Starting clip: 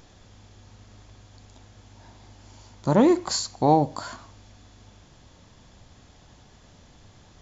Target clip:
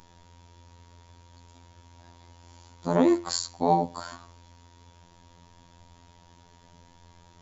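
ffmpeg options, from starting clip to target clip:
ffmpeg -i in.wav -af "aeval=exprs='val(0)+0.00316*sin(2*PI*920*n/s)':channel_layout=same,afftfilt=real='hypot(re,im)*cos(PI*b)':imag='0':win_size=2048:overlap=0.75" out.wav

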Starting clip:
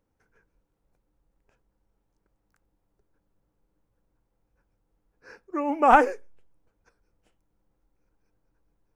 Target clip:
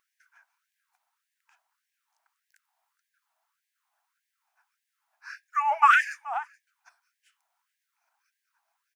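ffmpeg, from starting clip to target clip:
ffmpeg -i in.wav -filter_complex "[0:a]asettb=1/sr,asplit=3[link_01][link_02][link_03];[link_01]atrim=end=5.624[link_04];[link_02]atrim=start=5.62:end=6.11,asetpts=PTS-STARTPTS,afade=type=in:duration=0.004:curve=qsin,afade=type=out:start_time=0.486:duration=0.004:curve=qsin,highshelf=frequency=5300:gain=-7.5[link_05];[link_03]atrim=start=6.106[link_06];[link_04][link_05]acrossfade=duration=0.004:curve1=hsin:curve2=qsin[link_07];[link_07][link_06]acrossfade=duration=0.004:curve1=qsin:curve2=hsin,aecho=1:1:427:0.075,afftfilt=real='re*gte(b*sr/1024,600*pow(1600/600,0.5+0.5*sin(2*PI*1.7*pts/sr)))':imag='im*gte(b*sr/1024,600*pow(1600/600,0.5+0.5*sin(2*PI*1.7*pts/sr)))':win_size=1024:overlap=0.75,volume=8dB" out.wav

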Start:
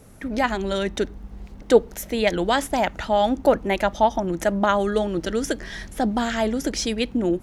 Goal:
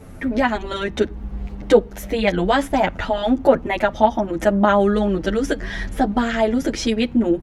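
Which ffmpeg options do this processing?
ffmpeg -i in.wav -filter_complex "[0:a]bass=frequency=250:gain=2,treble=frequency=4000:gain=-9,asplit=2[link_01][link_02];[link_02]acompressor=threshold=-31dB:ratio=6,volume=1.5dB[link_03];[link_01][link_03]amix=inputs=2:normalize=0,asplit=2[link_04][link_05];[link_05]adelay=8.7,afreqshift=-0.32[link_06];[link_04][link_06]amix=inputs=2:normalize=1,volume=4dB" out.wav

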